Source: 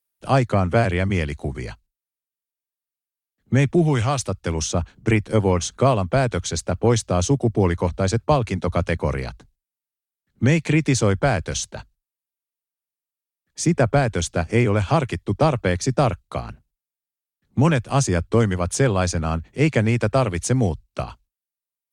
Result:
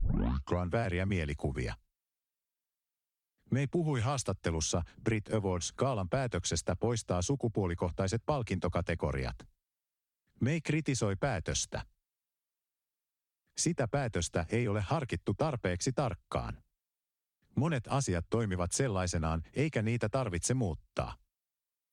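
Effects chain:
turntable start at the beginning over 0.64 s
downward compressor 5 to 1, threshold −26 dBFS, peak gain reduction 13 dB
level −3 dB

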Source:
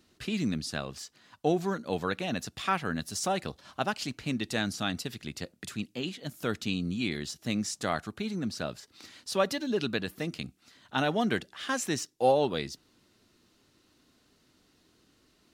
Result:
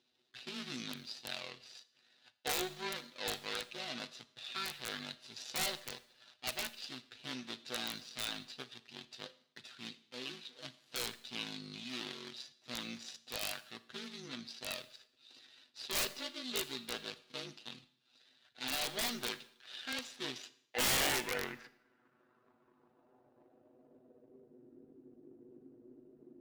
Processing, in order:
running median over 41 samples
band-pass filter sweep 3,900 Hz → 350 Hz, 0:11.85–0:14.61
time stretch by overlap-add 1.7×, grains 39 ms
wrap-around overflow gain 41 dB
four-comb reverb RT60 0.66 s, combs from 27 ms, DRR 15 dB
level +16.5 dB

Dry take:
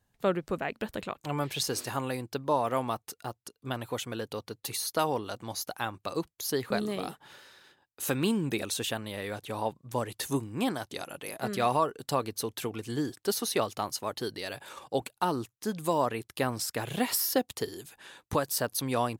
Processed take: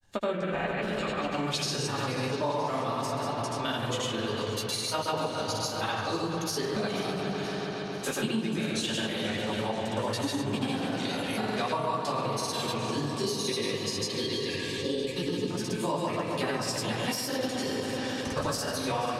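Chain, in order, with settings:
high-shelf EQ 2,400 Hz +8.5 dB
rectangular room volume 220 cubic metres, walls mixed, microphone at 2.7 metres
granular cloud, pitch spread up and down by 0 semitones
gain on a spectral selection 0:12.99–0:15.51, 550–1,600 Hz −23 dB
on a send: delay with a low-pass on its return 136 ms, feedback 85%, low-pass 3,800 Hz, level −11 dB
on the sum: downward compressor 5 to 1, threshold −28 dBFS, peak gain reduction 15.5 dB
low-pass filter 7,300 Hz 12 dB per octave
feedback echo with a swinging delay time 485 ms, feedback 62%, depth 64 cents, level −15 dB

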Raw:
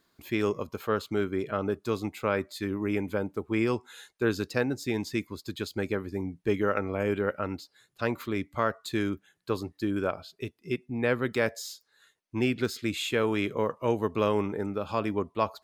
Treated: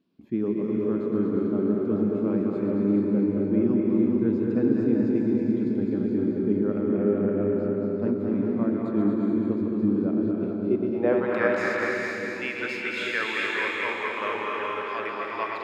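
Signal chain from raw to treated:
feedback delay that plays each chunk backwards 109 ms, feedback 76%, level −5 dB
noise in a band 2,300–5,300 Hz −65 dBFS
band-pass filter sweep 230 Hz → 1,800 Hz, 0:10.52–0:11.62
echo with a time of its own for lows and highs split 480 Hz, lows 783 ms, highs 247 ms, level −7 dB
reverb whose tail is shaped and stops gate 470 ms rising, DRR 0.5 dB
level +7 dB

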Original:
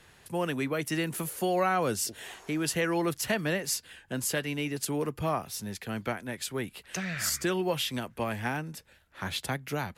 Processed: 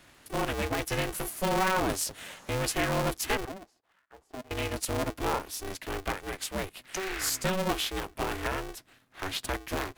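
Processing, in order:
0:03.45–0:04.51: envelope filter 440–1,600 Hz, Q 8.8, down, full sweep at −25.5 dBFS
ring modulator with a square carrier 190 Hz

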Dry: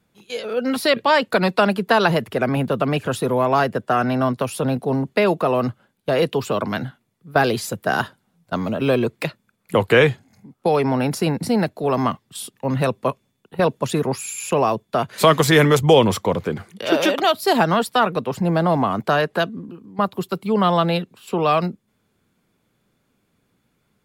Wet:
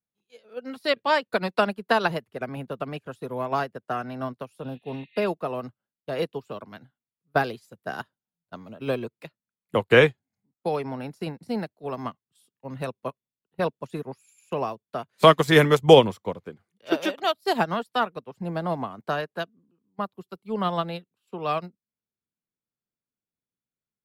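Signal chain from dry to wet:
healed spectral selection 0:04.66–0:05.20, 1,700–4,500 Hz both
expander for the loud parts 2.5 to 1, over −31 dBFS
level +2 dB

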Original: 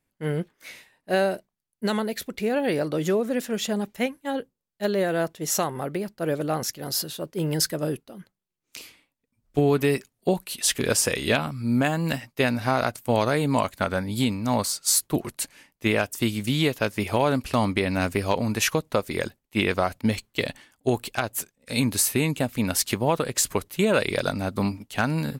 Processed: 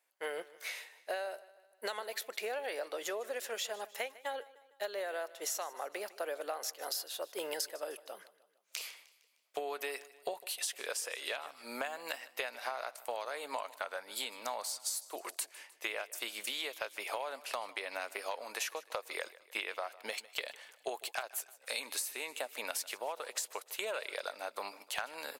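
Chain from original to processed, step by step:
high-pass filter 540 Hz 24 dB per octave
downward compressor 12 to 1, threshold −37 dBFS, peak gain reduction 20 dB
on a send: repeating echo 153 ms, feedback 50%, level −19 dB
on the sum: level +2 dB

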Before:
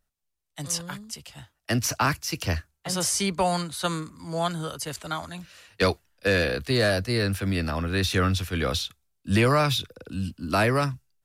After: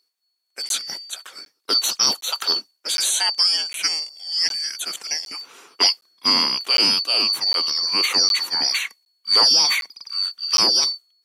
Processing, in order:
band-splitting scrambler in four parts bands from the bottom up 2341
high-pass filter 350 Hz 12 dB per octave
regular buffer underruns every 0.76 s, samples 512, zero, from 0:00.69
level +5 dB

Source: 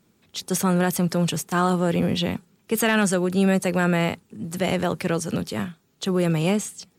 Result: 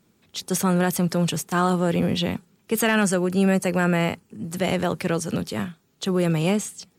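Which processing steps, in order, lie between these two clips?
0:02.86–0:04.51: notch filter 3,700 Hz, Q 6.3

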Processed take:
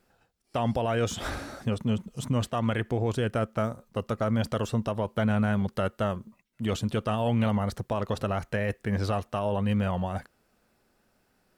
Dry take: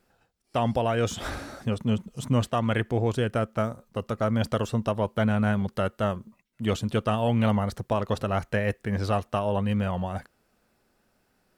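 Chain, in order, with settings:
brickwall limiter −18 dBFS, peak gain reduction 4.5 dB

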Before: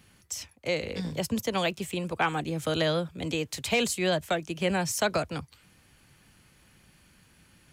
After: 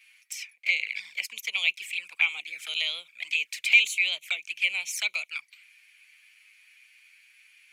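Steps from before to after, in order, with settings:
flanger swept by the level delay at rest 9.6 ms, full sweep at −25.5 dBFS
high-pass with resonance 2,300 Hz, resonance Q 8.1

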